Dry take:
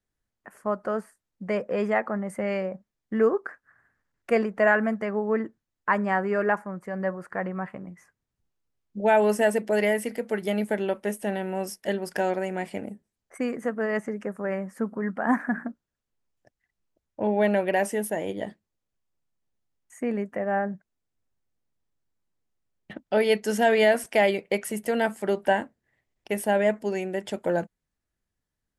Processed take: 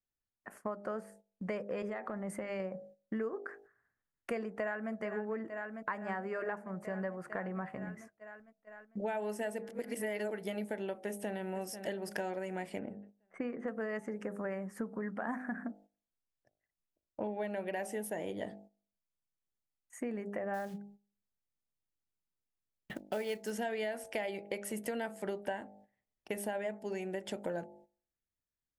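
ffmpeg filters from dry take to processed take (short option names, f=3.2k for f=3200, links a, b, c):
-filter_complex "[0:a]asettb=1/sr,asplit=3[a][b][c];[a]atrim=end=1.824[d];[b]atrim=start=1.82:end=2.6,asetpts=PTS-STARTPTS,afade=t=in:d=0.004:c=qsin,afade=t=out:st=0.776:d=0.004:c=qsin,acompressor=threshold=-29dB:ratio=6:attack=3.2:release=140:knee=1:detection=peak[e];[c]atrim=start=2.596[f];[d][e]acrossfade=d=0.004:c1=hsin:c2=qsin[g];[g][f]acrossfade=d=0.004:c1=qsin:c2=hsin,asplit=2[h][i];[i]afade=t=in:st=4.52:d=0.01,afade=t=out:st=4.92:d=0.01,aecho=0:1:450|900|1350|1800|2250|2700|3150|3600|4050|4500|4950|5400:0.177828|0.142262|0.11381|0.0910479|0.0728383|0.0582707|0.0466165|0.0372932|0.0298346|0.0238677|0.0190941|0.0152753[j];[h][j]amix=inputs=2:normalize=0,asplit=2[k][l];[l]afade=t=in:st=11.06:d=0.01,afade=t=out:st=11.48:d=0.01,aecho=0:1:490|980|1470|1960:0.16788|0.0755462|0.0339958|0.0152981[m];[k][m]amix=inputs=2:normalize=0,asettb=1/sr,asplit=3[n][o][p];[n]atrim=end=12.794[q];[o]atrim=start=12.79:end=13.68,asetpts=PTS-STARTPTS,afade=t=in:d=0.004:c=qsin,afade=t=out:st=0.886:d=0.004:c=qsin,lowpass=2.5k[r];[p]atrim=start=13.676[s];[q][r]acrossfade=d=0.004:c1=hsin:c2=qsin[t];[t][s]acrossfade=d=0.004:c1=qsin:c2=hsin,asplit=3[u][v][w];[u]afade=t=out:st=20.53:d=0.02[x];[v]acrusher=bits=5:mode=log:mix=0:aa=0.000001,afade=t=in:st=20.53:d=0.02,afade=t=out:st=23.5:d=0.02[y];[w]afade=t=in:st=23.5:d=0.02[z];[x][y][z]amix=inputs=3:normalize=0,asplit=3[aa][ab][ac];[aa]atrim=end=9.692[ad];[ab]atrim=start=9.688:end=10.312,asetpts=PTS-STARTPTS,areverse[ae];[ac]atrim=start=10.308[af];[ad][ae]acrossfade=d=0.004:c1=hsin:c2=hsin[ag];[ag][af]acrossfade=d=0.004:c1=hsin:c2=hsin,bandreject=f=50.64:t=h:w=4,bandreject=f=101.28:t=h:w=4,bandreject=f=151.92:t=h:w=4,bandreject=f=202.56:t=h:w=4,bandreject=f=253.2:t=h:w=4,bandreject=f=303.84:t=h:w=4,bandreject=f=354.48:t=h:w=4,bandreject=f=405.12:t=h:w=4,bandreject=f=455.76:t=h:w=4,bandreject=f=506.4:t=h:w=4,bandreject=f=557.04:t=h:w=4,bandreject=f=607.68:t=h:w=4,bandreject=f=658.32:t=h:w=4,bandreject=f=708.96:t=h:w=4,bandreject=f=759.6:t=h:w=4,bandreject=f=810.24:t=h:w=4,bandreject=f=860.88:t=h:w=4,agate=range=-11dB:threshold=-52dB:ratio=16:detection=peak,acompressor=threshold=-33dB:ratio=6,volume=-2dB"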